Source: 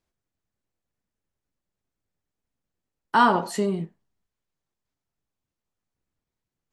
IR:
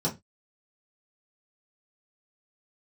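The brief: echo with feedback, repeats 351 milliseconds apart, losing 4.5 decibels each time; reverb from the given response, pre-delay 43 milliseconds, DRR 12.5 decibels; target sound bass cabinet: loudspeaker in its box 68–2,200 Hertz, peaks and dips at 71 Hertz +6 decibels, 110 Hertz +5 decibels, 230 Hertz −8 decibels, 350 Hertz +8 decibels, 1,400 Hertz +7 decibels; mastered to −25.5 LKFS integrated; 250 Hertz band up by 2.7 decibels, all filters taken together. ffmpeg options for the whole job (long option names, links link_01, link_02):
-filter_complex "[0:a]equalizer=frequency=250:width_type=o:gain=6.5,aecho=1:1:351|702|1053|1404|1755|2106|2457|2808|3159:0.596|0.357|0.214|0.129|0.0772|0.0463|0.0278|0.0167|0.01,asplit=2[link_01][link_02];[1:a]atrim=start_sample=2205,adelay=43[link_03];[link_02][link_03]afir=irnorm=-1:irlink=0,volume=-20.5dB[link_04];[link_01][link_04]amix=inputs=2:normalize=0,highpass=frequency=68:width=0.5412,highpass=frequency=68:width=1.3066,equalizer=frequency=71:width_type=q:width=4:gain=6,equalizer=frequency=110:width_type=q:width=4:gain=5,equalizer=frequency=230:width_type=q:width=4:gain=-8,equalizer=frequency=350:width_type=q:width=4:gain=8,equalizer=frequency=1400:width_type=q:width=4:gain=7,lowpass=frequency=2200:width=0.5412,lowpass=frequency=2200:width=1.3066,volume=-5.5dB"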